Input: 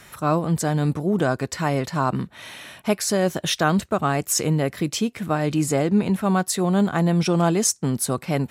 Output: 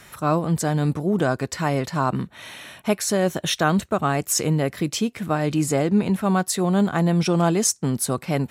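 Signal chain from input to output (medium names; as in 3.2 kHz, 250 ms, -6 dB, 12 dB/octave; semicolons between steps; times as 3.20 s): 2.06–4.17 s: band-stop 4.9 kHz, Q 11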